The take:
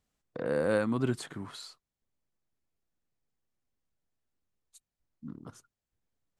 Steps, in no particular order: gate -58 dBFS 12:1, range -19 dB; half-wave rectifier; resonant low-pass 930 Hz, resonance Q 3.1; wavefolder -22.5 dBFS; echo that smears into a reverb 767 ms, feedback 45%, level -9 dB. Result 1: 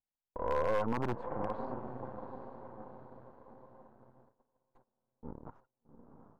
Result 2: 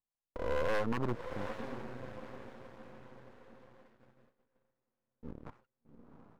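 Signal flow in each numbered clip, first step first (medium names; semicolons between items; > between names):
echo that smears into a reverb > gate > half-wave rectifier > resonant low-pass > wavefolder; resonant low-pass > wavefolder > echo that smears into a reverb > gate > half-wave rectifier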